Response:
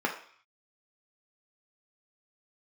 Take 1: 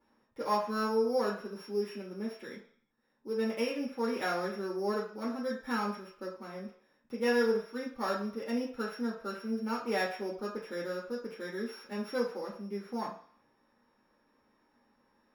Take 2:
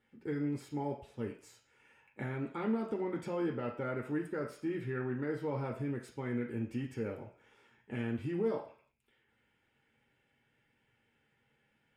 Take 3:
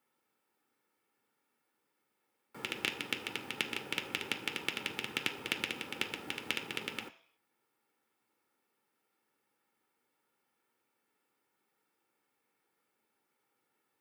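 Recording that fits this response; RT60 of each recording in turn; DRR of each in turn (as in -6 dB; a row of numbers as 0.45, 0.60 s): 2; 0.55, 0.55, 0.55 s; -4.0, 0.5, 9.0 dB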